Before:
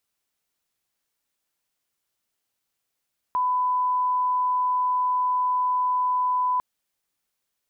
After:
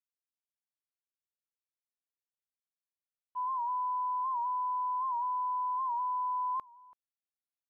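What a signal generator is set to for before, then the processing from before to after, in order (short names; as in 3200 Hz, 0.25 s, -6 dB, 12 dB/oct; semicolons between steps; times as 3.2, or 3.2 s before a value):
line-up tone -20 dBFS 3.25 s
expander -16 dBFS; echo 0.331 s -23 dB; record warp 78 rpm, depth 100 cents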